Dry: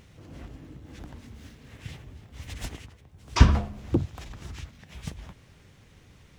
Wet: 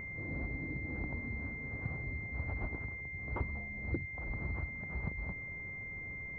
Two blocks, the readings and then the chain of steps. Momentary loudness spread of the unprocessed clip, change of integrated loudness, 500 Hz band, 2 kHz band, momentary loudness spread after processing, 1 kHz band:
25 LU, -12.5 dB, -8.0 dB, +4.0 dB, 3 LU, -13.0 dB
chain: compression 16:1, threshold -38 dBFS, peak gain reduction 30 dB; class-D stage that switches slowly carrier 2.1 kHz; trim +4.5 dB

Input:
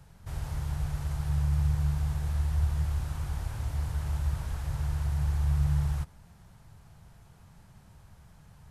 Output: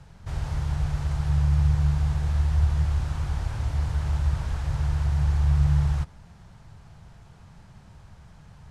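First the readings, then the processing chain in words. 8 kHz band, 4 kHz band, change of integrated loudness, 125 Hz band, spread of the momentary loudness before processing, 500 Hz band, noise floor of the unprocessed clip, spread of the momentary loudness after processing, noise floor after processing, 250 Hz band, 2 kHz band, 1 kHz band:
+1.0 dB, +5.0 dB, +5.5 dB, +5.5 dB, 8 LU, +5.5 dB, -56 dBFS, 8 LU, -50 dBFS, +5.5 dB, +5.5 dB, +5.5 dB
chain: low-pass 6.7 kHz 12 dB/octave; trim +5.5 dB

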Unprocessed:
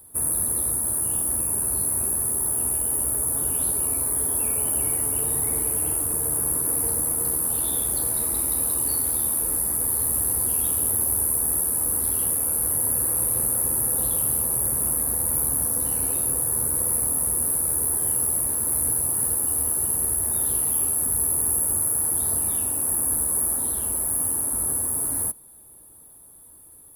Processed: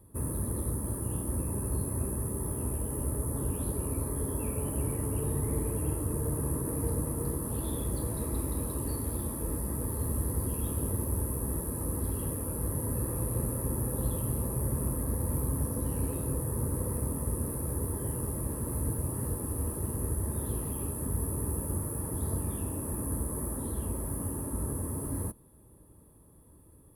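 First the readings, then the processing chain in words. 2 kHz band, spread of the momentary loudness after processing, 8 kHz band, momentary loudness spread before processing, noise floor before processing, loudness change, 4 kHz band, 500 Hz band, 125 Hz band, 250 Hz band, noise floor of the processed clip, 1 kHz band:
-8.5 dB, 3 LU, -17.0 dB, 2 LU, -48 dBFS, -12.0 dB, no reading, 0.0 dB, +6.0 dB, +3.5 dB, -56 dBFS, -5.0 dB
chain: tilt EQ -3.5 dB/octave; comb of notches 730 Hz; trim -3.5 dB

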